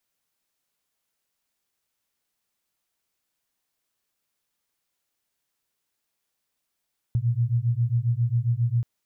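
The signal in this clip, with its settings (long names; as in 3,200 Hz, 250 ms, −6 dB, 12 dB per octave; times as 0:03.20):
two tones that beat 115 Hz, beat 7.4 Hz, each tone −23.5 dBFS 1.68 s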